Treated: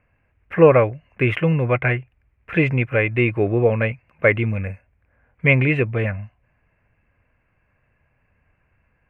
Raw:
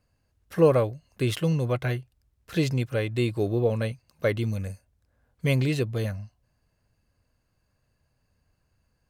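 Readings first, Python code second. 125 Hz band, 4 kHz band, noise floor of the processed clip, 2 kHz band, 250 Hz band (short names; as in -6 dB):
+5.5 dB, -1.0 dB, -67 dBFS, +14.5 dB, +5.5 dB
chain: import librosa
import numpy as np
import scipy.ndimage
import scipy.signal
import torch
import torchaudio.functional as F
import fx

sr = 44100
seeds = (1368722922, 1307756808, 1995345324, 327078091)

y = fx.curve_eq(x, sr, hz=(280.0, 1400.0, 2400.0, 4200.0), db=(0, 5, 12, -26))
y = y * 10.0 ** (5.5 / 20.0)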